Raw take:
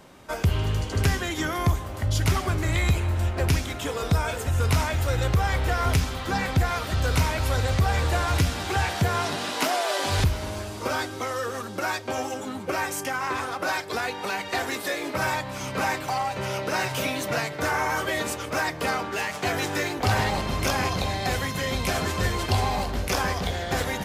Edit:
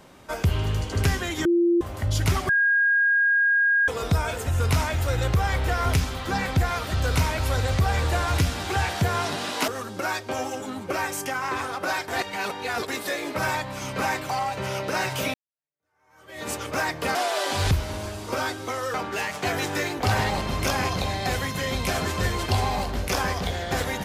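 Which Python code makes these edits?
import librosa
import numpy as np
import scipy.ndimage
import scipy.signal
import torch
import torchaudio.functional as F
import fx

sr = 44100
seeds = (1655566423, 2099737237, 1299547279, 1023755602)

y = fx.edit(x, sr, fx.bleep(start_s=1.45, length_s=0.36, hz=344.0, db=-16.5),
    fx.bleep(start_s=2.49, length_s=1.39, hz=1630.0, db=-17.0),
    fx.move(start_s=9.68, length_s=1.79, to_s=18.94),
    fx.reverse_span(start_s=13.87, length_s=0.8),
    fx.fade_in_span(start_s=17.13, length_s=1.16, curve='exp'), tone=tone)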